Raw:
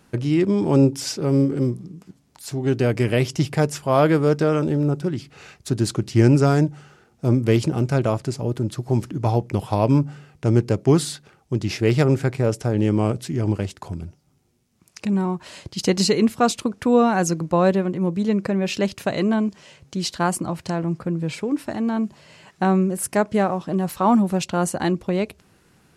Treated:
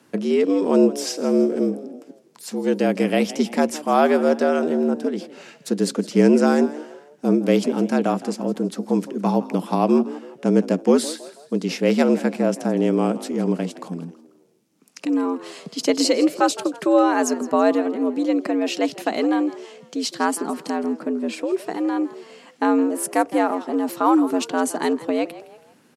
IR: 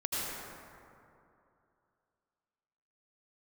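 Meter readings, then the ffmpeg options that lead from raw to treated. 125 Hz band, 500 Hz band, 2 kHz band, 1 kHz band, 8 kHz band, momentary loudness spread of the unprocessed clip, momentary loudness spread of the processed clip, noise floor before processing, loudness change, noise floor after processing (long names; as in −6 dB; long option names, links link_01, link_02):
−11.5 dB, +2.0 dB, +1.0 dB, +1.5 dB, 0.0 dB, 10 LU, 11 LU, −60 dBFS, +0.5 dB, −54 dBFS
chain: -filter_complex "[0:a]asplit=4[link_01][link_02][link_03][link_04];[link_02]adelay=163,afreqshift=68,volume=-17dB[link_05];[link_03]adelay=326,afreqshift=136,volume=-24.7dB[link_06];[link_04]adelay=489,afreqshift=204,volume=-32.5dB[link_07];[link_01][link_05][link_06][link_07]amix=inputs=4:normalize=0,afreqshift=85"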